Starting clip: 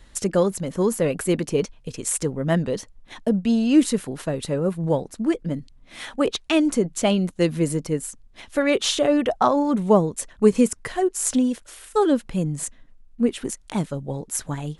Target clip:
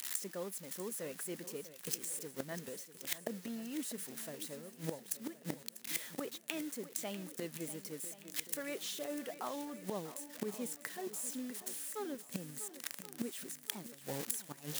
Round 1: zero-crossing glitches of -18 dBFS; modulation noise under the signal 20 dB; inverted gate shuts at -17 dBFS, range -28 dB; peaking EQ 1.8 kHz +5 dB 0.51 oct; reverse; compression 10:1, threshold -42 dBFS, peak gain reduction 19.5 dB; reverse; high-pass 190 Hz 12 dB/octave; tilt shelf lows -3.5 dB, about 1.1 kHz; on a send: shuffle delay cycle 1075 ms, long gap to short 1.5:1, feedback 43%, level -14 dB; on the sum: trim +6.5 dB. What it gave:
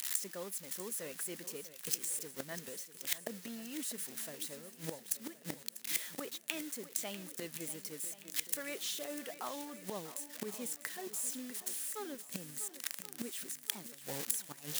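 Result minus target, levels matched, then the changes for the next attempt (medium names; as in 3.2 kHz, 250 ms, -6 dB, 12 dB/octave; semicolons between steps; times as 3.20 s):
1 kHz band -2.5 dB
remove: tilt shelf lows -3.5 dB, about 1.1 kHz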